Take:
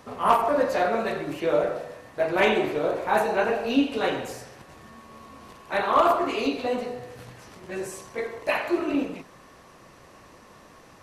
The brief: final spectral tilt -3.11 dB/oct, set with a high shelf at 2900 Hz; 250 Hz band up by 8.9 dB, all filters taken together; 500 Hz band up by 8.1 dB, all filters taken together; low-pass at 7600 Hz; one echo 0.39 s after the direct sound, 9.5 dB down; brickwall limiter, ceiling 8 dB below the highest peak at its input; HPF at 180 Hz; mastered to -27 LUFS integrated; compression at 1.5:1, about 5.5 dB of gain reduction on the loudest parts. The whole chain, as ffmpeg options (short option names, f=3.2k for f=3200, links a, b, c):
-af "highpass=180,lowpass=7.6k,equalizer=f=250:t=o:g=9,equalizer=f=500:t=o:g=7.5,highshelf=f=2.9k:g=8.5,acompressor=threshold=-23dB:ratio=1.5,alimiter=limit=-15dB:level=0:latency=1,aecho=1:1:390:0.335,volume=-2dB"